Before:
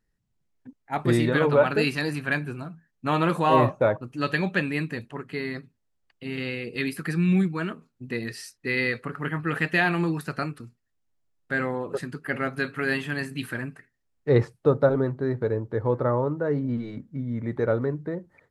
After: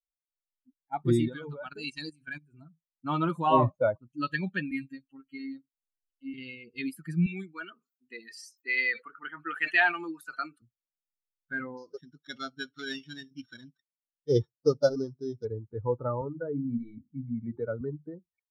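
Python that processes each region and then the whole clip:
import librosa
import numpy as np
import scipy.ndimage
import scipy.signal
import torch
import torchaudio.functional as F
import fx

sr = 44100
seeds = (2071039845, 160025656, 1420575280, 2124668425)

y = fx.chain(x, sr, fx.lowpass(hz=9500.0, slope=24),
    fx.high_shelf(hz=6200.0, db=11.5),
    fx.level_steps(step_db=14), at=(1.28, 2.54))
y = fx.chain(y, sr, fx.comb(ms=3.7, depth=0.53),
    fx.robotise(hz=135.0), at=(4.71, 6.34))
y = fx.chain(y, sr, fx.highpass(hz=340.0, slope=12),
    fx.peak_eq(hz=1800.0, db=3.0, octaves=2.6),
    fx.sustainer(db_per_s=140.0), at=(7.26, 10.62))
y = fx.chain(y, sr, fx.sample_sort(block=8),
    fx.lowpass(hz=3900.0, slope=12),
    fx.low_shelf(hz=160.0, db=-6.0), at=(11.77, 15.45))
y = fx.chain(y, sr, fx.high_shelf(hz=11000.0, db=-11.5),
    fx.hum_notches(base_hz=50, count=8),
    fx.band_squash(depth_pct=40), at=(16.21, 17.81))
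y = fx.bin_expand(y, sr, power=2.0)
y = fx.high_shelf(y, sr, hz=8700.0, db=-8.0)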